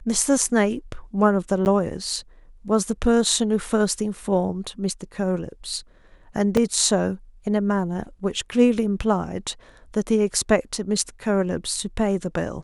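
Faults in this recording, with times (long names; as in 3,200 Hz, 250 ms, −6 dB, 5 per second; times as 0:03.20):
0:01.65–0:01.66: drop-out 9.9 ms
0:06.57: drop-out 3.4 ms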